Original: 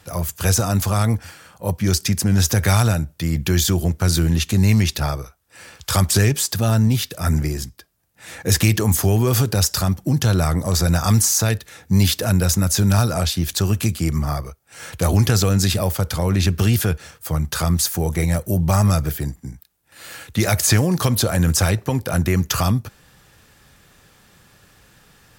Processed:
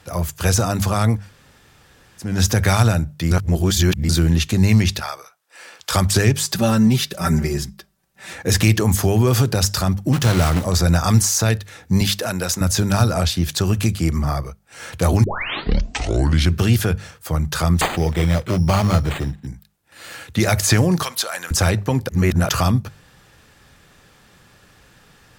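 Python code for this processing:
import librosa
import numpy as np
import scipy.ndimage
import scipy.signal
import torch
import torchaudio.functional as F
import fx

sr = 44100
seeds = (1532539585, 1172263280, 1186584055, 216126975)

y = fx.highpass(x, sr, hz=fx.line((4.99, 1100.0), (5.92, 280.0)), slope=12, at=(4.99, 5.92), fade=0.02)
y = fx.comb(y, sr, ms=5.2, depth=0.82, at=(6.47, 8.33))
y = fx.block_float(y, sr, bits=3, at=(10.12, 10.64), fade=0.02)
y = fx.highpass(y, sr, hz=440.0, slope=6, at=(12.01, 12.61))
y = fx.resample_bad(y, sr, factor=8, down='none', up='hold', at=(17.81, 19.47))
y = fx.highpass(y, sr, hz=1000.0, slope=12, at=(21.03, 21.51))
y = fx.edit(y, sr, fx.room_tone_fill(start_s=1.21, length_s=1.07, crossfade_s=0.24),
    fx.reverse_span(start_s=3.31, length_s=0.78),
    fx.tape_start(start_s=15.24, length_s=1.36),
    fx.reverse_span(start_s=22.09, length_s=0.4), tone=tone)
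y = fx.high_shelf(y, sr, hz=8900.0, db=-8.5)
y = fx.hum_notches(y, sr, base_hz=50, count=4)
y = F.gain(torch.from_numpy(y), 2.0).numpy()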